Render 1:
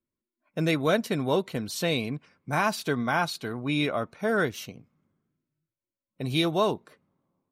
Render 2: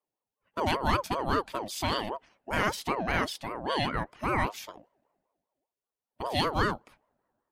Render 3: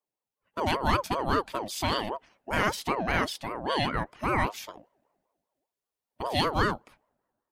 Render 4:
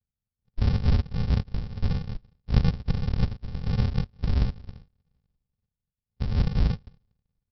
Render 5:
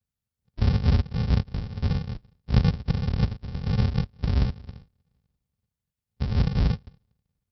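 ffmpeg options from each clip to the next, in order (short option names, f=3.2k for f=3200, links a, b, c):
-af "aeval=exprs='val(0)*sin(2*PI*620*n/s+620*0.35/5.1*sin(2*PI*5.1*n/s))':c=same"
-af "dynaudnorm=f=160:g=7:m=4.5dB,volume=-3dB"
-af "aresample=11025,acrusher=samples=34:mix=1:aa=0.000001,aresample=44100,bass=f=250:g=10,treble=f=4k:g=8,bandreject=f=1.3k:w=24,volume=-4.5dB"
-af "highpass=49,volume=2.5dB"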